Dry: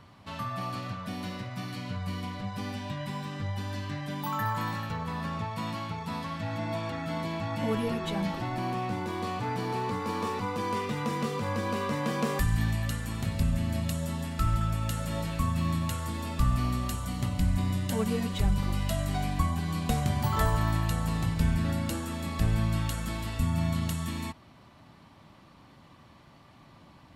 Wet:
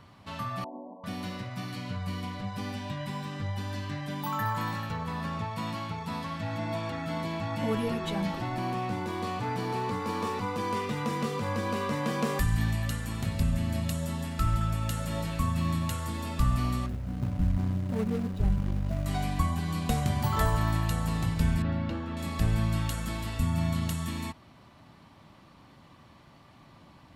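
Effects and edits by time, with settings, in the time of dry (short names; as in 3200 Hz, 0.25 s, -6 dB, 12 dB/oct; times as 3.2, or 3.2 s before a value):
0.64–1.04 brick-wall FIR band-pass 210–1100 Hz
16.86–19.06 median filter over 41 samples
21.62–22.17 air absorption 270 m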